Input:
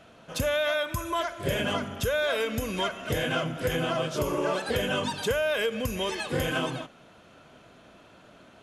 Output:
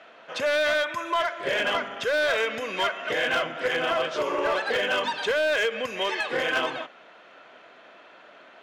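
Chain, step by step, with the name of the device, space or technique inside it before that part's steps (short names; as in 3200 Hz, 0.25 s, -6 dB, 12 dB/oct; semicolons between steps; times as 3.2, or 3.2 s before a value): megaphone (BPF 480–3700 Hz; bell 1900 Hz +5 dB 0.48 oct; hard clip -24 dBFS, distortion -15 dB); gain +5 dB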